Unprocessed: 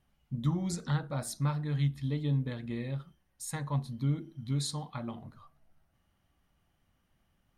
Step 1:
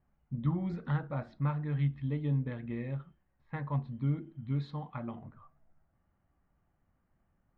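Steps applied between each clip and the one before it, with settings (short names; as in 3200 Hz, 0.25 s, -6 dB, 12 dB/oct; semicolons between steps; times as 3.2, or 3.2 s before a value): LPF 2600 Hz 24 dB/oct; low-pass opened by the level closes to 1600 Hz, open at -29 dBFS; gain -1 dB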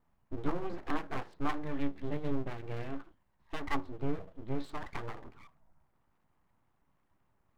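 bell 970 Hz +12.5 dB 0.24 oct; full-wave rectifier; gain +1 dB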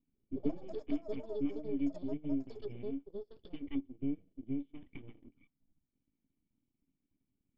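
vocal tract filter i; transient shaper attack +4 dB, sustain -9 dB; echoes that change speed 0.145 s, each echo +7 st, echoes 2, each echo -6 dB; gain +2 dB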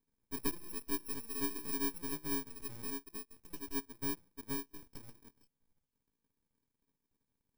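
FFT order left unsorted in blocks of 64 samples; gain -2.5 dB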